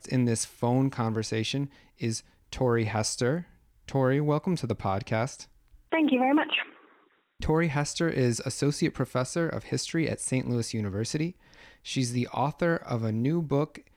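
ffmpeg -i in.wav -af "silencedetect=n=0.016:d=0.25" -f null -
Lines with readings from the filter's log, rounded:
silence_start: 1.66
silence_end: 2.02 | silence_duration: 0.36
silence_start: 2.19
silence_end: 2.53 | silence_duration: 0.34
silence_start: 3.41
silence_end: 3.88 | silence_duration: 0.47
silence_start: 5.42
silence_end: 5.92 | silence_duration: 0.50
silence_start: 6.63
silence_end: 7.40 | silence_duration: 0.77
silence_start: 11.31
silence_end: 11.87 | silence_duration: 0.56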